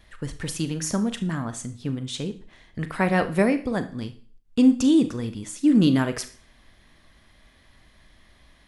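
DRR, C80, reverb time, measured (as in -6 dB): 9.5 dB, 19.0 dB, 0.45 s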